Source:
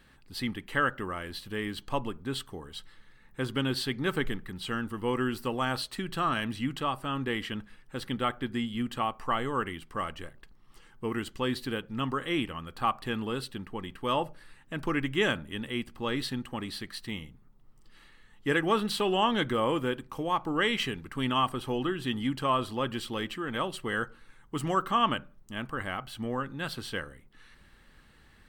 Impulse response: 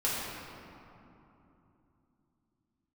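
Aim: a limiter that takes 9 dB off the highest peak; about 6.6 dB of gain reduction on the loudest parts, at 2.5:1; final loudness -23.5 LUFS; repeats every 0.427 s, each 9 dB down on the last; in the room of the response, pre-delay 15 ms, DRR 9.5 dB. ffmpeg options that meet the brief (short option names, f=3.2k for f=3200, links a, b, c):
-filter_complex "[0:a]acompressor=threshold=-31dB:ratio=2.5,alimiter=level_in=3.5dB:limit=-24dB:level=0:latency=1,volume=-3.5dB,aecho=1:1:427|854|1281|1708:0.355|0.124|0.0435|0.0152,asplit=2[a][b];[1:a]atrim=start_sample=2205,adelay=15[c];[b][c]afir=irnorm=-1:irlink=0,volume=-18.5dB[d];[a][d]amix=inputs=2:normalize=0,volume=14dB"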